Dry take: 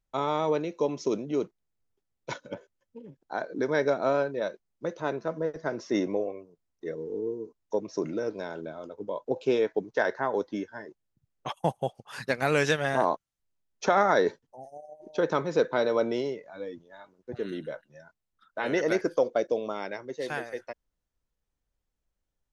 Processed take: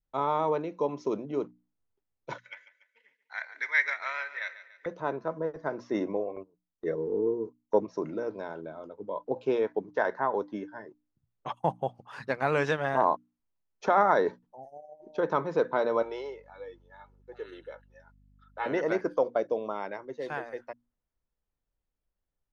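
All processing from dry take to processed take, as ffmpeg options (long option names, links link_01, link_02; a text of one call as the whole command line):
ffmpeg -i in.wav -filter_complex "[0:a]asettb=1/sr,asplit=3[link_01][link_02][link_03];[link_01]atrim=end=2.384[link_04];[link_02]atrim=start=2.38:end=4.86,asetpts=PTS-STARTPTS,afade=type=in:duration=0.004:curve=qsin,afade=type=out:start_time=2.476:duration=0.004:curve=qsin,highpass=frequency=2000:width_type=q:width=12,highshelf=frequency=2800:gain=8,aecho=1:1:144|288|432|576:0.2|0.0938|0.0441|0.0207,atrim=end_sample=109368[link_05];[link_03]atrim=start=4.856[link_06];[link_04][link_05]acrossfade=duration=0.004:curve1=hsin:curve2=qsin[link_07];[link_07][link_06]acrossfade=duration=0.004:curve1=qsin:curve2=hsin,asettb=1/sr,asplit=3[link_08][link_09][link_10];[link_08]atrim=end=6.364[link_11];[link_09]atrim=start=6.36:end=7.85,asetpts=PTS-STARTPTS,afade=type=in:duration=0.004:curve=qsin,afade=type=out:start_time=1.486:duration=0.004:curve=qsin,agate=range=-14dB:threshold=-47dB:ratio=16:release=100:detection=peak,acontrast=66[link_12];[link_10]atrim=start=7.846[link_13];[link_11][link_12]acrossfade=duration=0.004:curve1=hsin:curve2=qsin[link_14];[link_14][link_13]acrossfade=duration=0.004:curve1=qsin:curve2=hsin,asettb=1/sr,asplit=3[link_15][link_16][link_17];[link_15]atrim=end=16.024[link_18];[link_16]atrim=start=16.02:end=18.66,asetpts=PTS-STARTPTS,afade=type=in:duration=0.004:curve=qsin,afade=type=out:start_time=2.636:duration=0.004:curve=qsin,highpass=640,aecho=1:1:2.3:0.61,atrim=end_sample=116424,aeval=exprs='val(0)+0.00141*(sin(2*PI*50*n/s)+sin(2*PI*2*50*n/s)/2+sin(2*PI*3*50*n/s)/3+sin(2*PI*4*50*n/s)/4+sin(2*PI*5*50*n/s)/5)':channel_layout=same[link_19];[link_17]atrim=start=18.656[link_20];[link_18][link_19]acrossfade=duration=0.004:curve1=hsin:curve2=qsin[link_21];[link_21][link_20]acrossfade=duration=0.004:curve1=qsin:curve2=hsin,aemphasis=mode=reproduction:type=75fm,bandreject=frequency=60:width_type=h:width=6,bandreject=frequency=120:width_type=h:width=6,bandreject=frequency=180:width_type=h:width=6,bandreject=frequency=240:width_type=h:width=6,bandreject=frequency=300:width_type=h:width=6,adynamicequalizer=threshold=0.00794:dfrequency=1000:dqfactor=1.7:tfrequency=1000:tqfactor=1.7:attack=5:release=100:ratio=0.375:range=3.5:mode=boostabove:tftype=bell,volume=-3.5dB" out.wav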